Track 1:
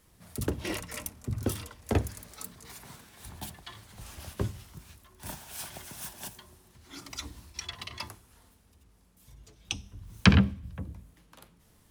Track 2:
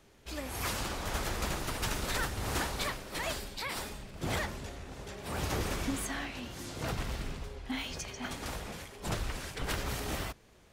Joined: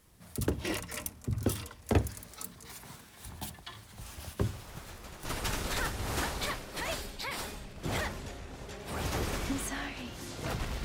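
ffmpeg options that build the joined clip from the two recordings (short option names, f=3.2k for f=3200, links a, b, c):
-filter_complex "[1:a]asplit=2[a][b];[0:a]apad=whole_dur=10.84,atrim=end=10.84,atrim=end=5.252[c];[b]atrim=start=1.628:end=7.22[d];[a]atrim=start=0.84:end=1.63,asetpts=PTS-STARTPTS,volume=-13.5dB,afade=t=in:d=0.004:c=hsin,afade=t=out:st=0.786:d=0.004:c=hsin,adelay=4460[e];[c][d]acrossfade=d=0.004:c1=hsin:c2=hsin[f];[f][e]amix=inputs=2:normalize=0"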